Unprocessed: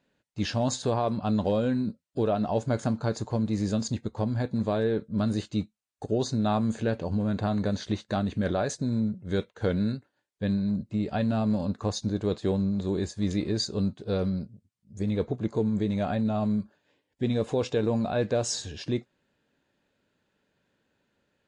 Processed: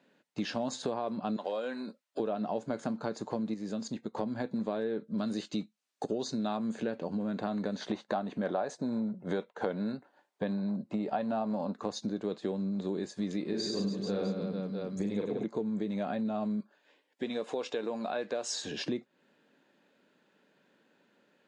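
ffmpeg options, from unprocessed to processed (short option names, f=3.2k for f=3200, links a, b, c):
-filter_complex "[0:a]asettb=1/sr,asplit=3[a][b][c];[a]atrim=end=1.364[d];[b]atrim=start=1.36:end=2.2,asetpts=PTS-STARTPTS,afade=t=in:d=0.004:c=qsin,afade=t=out:st=0.836:d=0.004:c=qsin,highpass=590[e];[c]atrim=start=2.196[f];[d][e]acrossfade=d=0.004:c1=hsin:c2=qsin[g];[g][f]acrossfade=d=0.004:c1=qsin:c2=hsin,asettb=1/sr,asplit=3[h][i][j];[h]atrim=end=5.084[k];[i]atrim=start=5.08:end=6.57,asetpts=PTS-STARTPTS,afade=t=in:d=0.004:c=qsin,afade=t=out:st=1.486:d=0.004:c=qsin,equalizer=f=5.4k:t=o:w=1.8:g=5.5[l];[j]atrim=start=6.566[m];[k][l]acrossfade=d=0.004:c1=hsin:c2=qsin[n];[n][m]acrossfade=d=0.004:c1=qsin:c2=hsin,asettb=1/sr,asplit=3[o][p][q];[o]atrim=end=7.814[r];[p]atrim=start=7.81:end=11.74,asetpts=PTS-STARTPTS,afade=t=in:d=0.004:c=qsin,afade=t=out:st=3.926:d=0.004:c=qsin,equalizer=f=820:w=1.1:g=10.5[s];[q]atrim=start=11.736[t];[r][s]acrossfade=d=0.004:c1=hsin:c2=qsin[u];[u][t]acrossfade=d=0.004:c1=qsin:c2=hsin,asettb=1/sr,asplit=3[v][w][x];[v]atrim=end=13.454[y];[w]atrim=start=13.45:end=15.44,asetpts=PTS-STARTPTS,afade=t=in:d=0.004:c=qsin,afade=t=out:st=1.986:d=0.004:c=qsin,aecho=1:1:40|96|174.4|284.2|437.8|653:0.794|0.631|0.501|0.398|0.316|0.251,atrim=end_sample=87759[z];[x]atrim=start=15.436[aa];[y][z]acrossfade=d=0.004:c1=hsin:c2=qsin[ab];[ab][aa]acrossfade=d=0.004:c1=qsin:c2=hsin,asettb=1/sr,asplit=3[ac][ad][ae];[ac]atrim=end=16.604[af];[ad]atrim=start=16.6:end=18.64,asetpts=PTS-STARTPTS,afade=t=in:d=0.004:c=qsin,afade=t=out:st=2.036:d=0.004:c=qsin,highpass=f=650:p=1[ag];[ae]atrim=start=18.636[ah];[af][ag]acrossfade=d=0.004:c1=hsin:c2=qsin[ai];[ai][ah]acrossfade=d=0.004:c1=qsin:c2=hsin,asplit=3[aj][ak][al];[aj]atrim=end=3.542[am];[ak]atrim=start=3.538:end=4.142,asetpts=PTS-STARTPTS,volume=-8dB[an];[al]atrim=start=4.138[ao];[am][an]acrossfade=d=0.004:c1=hsin:c2=hsin[ap];[ap][ao]acrossfade=d=0.004:c1=hsin:c2=hsin,highpass=f=180:w=0.5412,highpass=f=180:w=1.3066,highshelf=f=5.7k:g=-8.5,acompressor=threshold=-39dB:ratio=4,volume=6.5dB"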